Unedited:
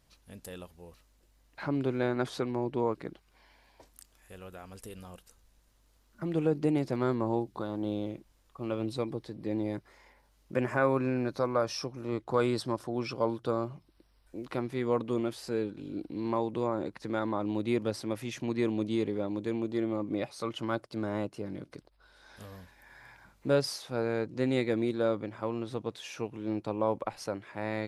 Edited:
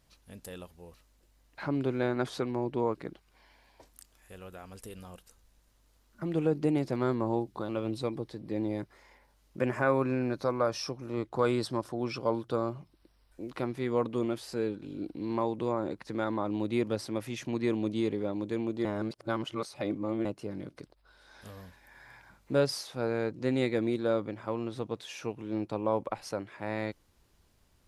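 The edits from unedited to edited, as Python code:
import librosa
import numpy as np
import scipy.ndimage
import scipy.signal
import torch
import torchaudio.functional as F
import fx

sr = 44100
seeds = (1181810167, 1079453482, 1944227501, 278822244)

y = fx.edit(x, sr, fx.cut(start_s=7.69, length_s=0.95),
    fx.reverse_span(start_s=19.8, length_s=1.4), tone=tone)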